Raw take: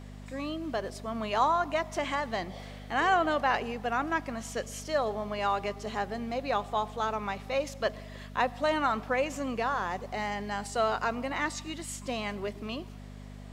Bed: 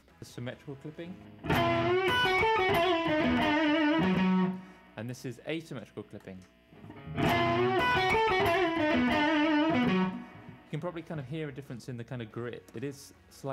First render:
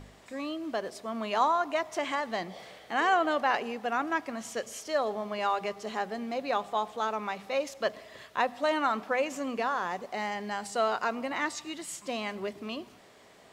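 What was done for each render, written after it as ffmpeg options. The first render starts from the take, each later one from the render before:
-af "bandreject=f=50:t=h:w=4,bandreject=f=100:t=h:w=4,bandreject=f=150:t=h:w=4,bandreject=f=200:t=h:w=4,bandreject=f=250:t=h:w=4"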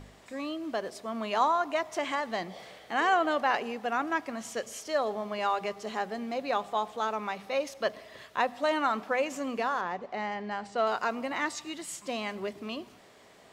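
-filter_complex "[0:a]asettb=1/sr,asplit=3[a][b][c];[a]atrim=end=7.324[d];[b]atrim=start=7.32:end=8.23,asetpts=PTS-STARTPTS,afade=t=in:d=0.004:c=qsin,afade=t=out:st=0.906:d=0.004:c=qsin,bandreject=f=7.3k:w=12[e];[c]atrim=start=8.226[f];[d][e]acrossfade=d=0.004:c1=hsin:c2=qsin[g];[g][f]acrossfade=d=0.004:c1=qsin:c2=hsin,asettb=1/sr,asplit=3[h][i][j];[h]atrim=end=9.814[k];[i]atrim=start=9.81:end=10.87,asetpts=PTS-STARTPTS,afade=t=in:d=0.004:c=qsin,afade=t=out:st=1.056:d=0.004:c=qsin,adynamicsmooth=sensitivity=1:basefreq=3.6k[l];[j]atrim=start=10.866[m];[k][l]acrossfade=d=0.004:c1=hsin:c2=qsin[n];[n][m]acrossfade=d=0.004:c1=qsin:c2=hsin"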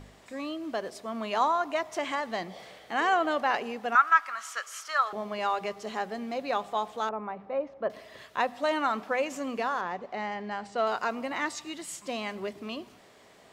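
-filter_complex "[0:a]asettb=1/sr,asplit=3[a][b][c];[a]atrim=end=3.954[d];[b]atrim=start=3.95:end=5.13,asetpts=PTS-STARTPTS,afade=t=in:d=0.004:c=qsin,afade=t=out:st=1.176:d=0.004:c=qsin,highpass=f=1.3k:t=q:w=5.9[e];[c]atrim=start=5.126[f];[d][e]acrossfade=d=0.004:c1=hsin:c2=qsin[g];[g][f]acrossfade=d=0.004:c1=qsin:c2=hsin,asettb=1/sr,asplit=3[h][i][j];[h]atrim=end=7.094[k];[i]atrim=start=7.09:end=7.9,asetpts=PTS-STARTPTS,afade=t=in:d=0.004:c=qsin,afade=t=out:st=0.806:d=0.004:c=qsin,lowpass=1.1k[l];[j]atrim=start=7.896[m];[k][l]acrossfade=d=0.004:c1=hsin:c2=qsin[n];[n][m]acrossfade=d=0.004:c1=qsin:c2=hsin"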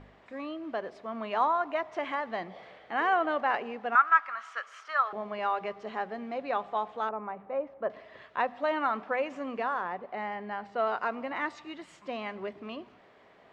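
-af "lowpass=2.3k,lowshelf=f=390:g=-4.5"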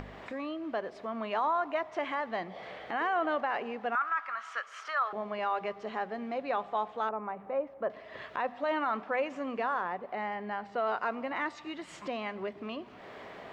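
-af "alimiter=limit=-21.5dB:level=0:latency=1:release=10,acompressor=mode=upward:threshold=-34dB:ratio=2.5"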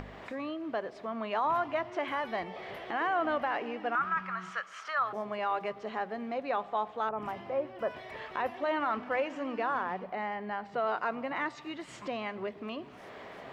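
-filter_complex "[1:a]volume=-21dB[a];[0:a][a]amix=inputs=2:normalize=0"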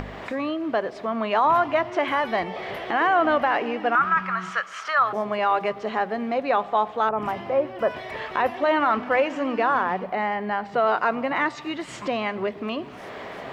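-af "volume=10dB"

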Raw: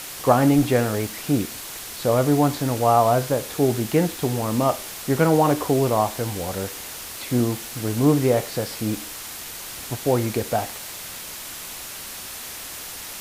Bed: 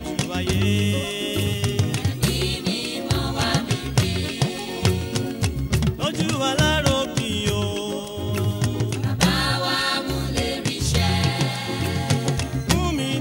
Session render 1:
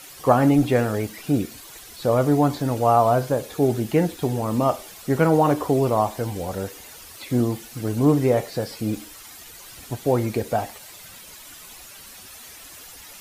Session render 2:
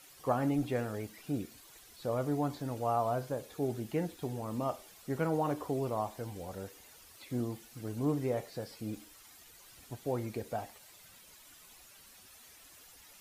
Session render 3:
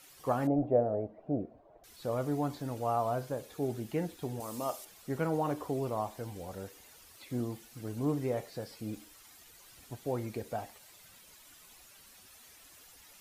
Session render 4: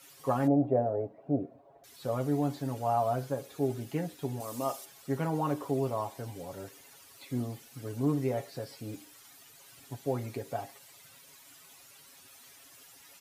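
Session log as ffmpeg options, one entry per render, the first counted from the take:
-af "afftdn=nr=11:nf=-36"
-af "volume=-14dB"
-filter_complex "[0:a]asettb=1/sr,asplit=3[a][b][c];[a]atrim=end=0.474[d];[b]atrim=start=0.47:end=1.84,asetpts=PTS-STARTPTS,afade=t=in:d=0.004:c=qsin,afade=t=out:st=1.366:d=0.004:c=qsin,lowpass=f=640:t=q:w=5.9[e];[c]atrim=start=1.836[f];[d][e]acrossfade=d=0.004:c1=hsin:c2=qsin[g];[g][f]acrossfade=d=0.004:c1=qsin:c2=hsin,asettb=1/sr,asplit=3[h][i][j];[h]atrim=end=4.404[k];[i]atrim=start=4.4:end=4.85,asetpts=PTS-STARTPTS,afade=t=in:d=0.004:c=qsin,afade=t=out:st=0.446:d=0.004:c=qsin,bass=f=250:g=-9,treble=f=4k:g=10[l];[j]atrim=start=4.846[m];[k][l]acrossfade=d=0.004:c1=hsin:c2=qsin[n];[n][m]acrossfade=d=0.004:c1=qsin:c2=hsin"
-af "highpass=81,aecho=1:1:7.3:0.65"

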